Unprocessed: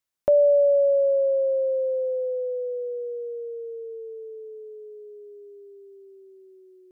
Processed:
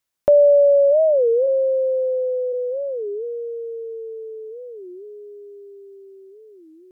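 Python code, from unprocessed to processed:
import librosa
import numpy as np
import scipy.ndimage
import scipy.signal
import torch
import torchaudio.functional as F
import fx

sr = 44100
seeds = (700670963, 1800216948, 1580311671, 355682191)

y = fx.steep_highpass(x, sr, hz=210.0, slope=36, at=(1.46, 2.52), fade=0.02)
y = fx.record_warp(y, sr, rpm=33.33, depth_cents=250.0)
y = F.gain(torch.from_numpy(y), 5.0).numpy()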